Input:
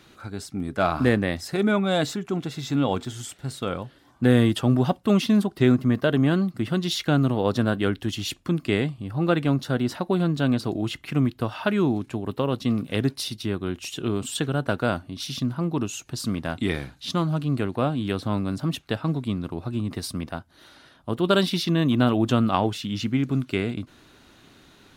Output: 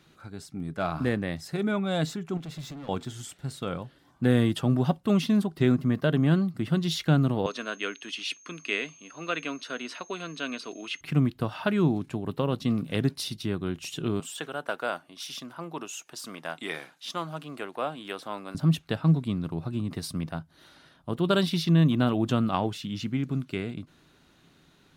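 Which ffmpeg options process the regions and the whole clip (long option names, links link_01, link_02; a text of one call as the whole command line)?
ffmpeg -i in.wav -filter_complex "[0:a]asettb=1/sr,asplit=3[link_01][link_02][link_03];[link_01]atrim=end=2.374[link_04];[link_02]atrim=start=2.37:end=2.89,asetpts=PTS-STARTPTS,afade=type=in:duration=0.004:curve=qsin,afade=type=out:start_time=0.516:duration=0.004:curve=qsin,acompressor=threshold=-27dB:ratio=12:attack=3.2:release=140:knee=1:detection=peak,volume=34dB,asoftclip=hard,volume=-34dB[link_05];[link_03]atrim=start=2.886[link_06];[link_04][link_05]acrossfade=duration=0.004:curve1=hsin:curve2=qsin[link_07];[link_07][link_06]acrossfade=duration=0.004:curve1=qsin:curve2=hsin,asettb=1/sr,asplit=3[link_08][link_09][link_10];[link_08]atrim=end=7.464[link_11];[link_09]atrim=start=7.46:end=11.01,asetpts=PTS-STARTPTS,afade=type=in:duration=0.004:curve=qsin,afade=type=out:start_time=3.546:duration=0.004:curve=qsin,highpass=frequency=330:width=0.5412,highpass=frequency=330:width=1.3066,equalizer=frequency=350:width_type=q:width=4:gain=-10,equalizer=frequency=550:width_type=q:width=4:gain=-7,equalizer=frequency=790:width_type=q:width=4:gain=-6,equalizer=frequency=2500:width_type=q:width=4:gain=9,equalizer=frequency=6800:width_type=q:width=4:gain=-10,lowpass=frequency=8900:width=0.5412,lowpass=frequency=8900:width=1.3066,bandreject=frequency=830:width=5.6,aeval=exprs='val(0)+0.00355*sin(2*PI*6400*n/s)':channel_layout=same[link_12];[link_10]atrim=start=11.006[link_13];[link_11][link_12]acrossfade=duration=0.004:curve1=hsin:curve2=qsin[link_14];[link_14][link_13]acrossfade=duration=0.004:curve1=qsin:curve2=hsin,asettb=1/sr,asplit=3[link_15][link_16][link_17];[link_15]atrim=end=14.204[link_18];[link_16]atrim=start=14.2:end=18.55,asetpts=PTS-STARTPTS,afade=type=in:duration=0.004:curve=qsin,afade=type=out:start_time=4.346:duration=0.004:curve=qsin,deesser=0.65,highpass=540,equalizer=frequency=4200:width_type=o:width=0.25:gain=-6[link_19];[link_17]atrim=start=18.546[link_20];[link_18][link_19]acrossfade=duration=0.004:curve1=hsin:curve2=qsin[link_21];[link_21][link_20]acrossfade=duration=0.004:curve1=qsin:curve2=hsin,dynaudnorm=framelen=250:gausssize=17:maxgain=5dB,equalizer=frequency=160:width_type=o:width=0.23:gain=10,volume=-7.5dB" out.wav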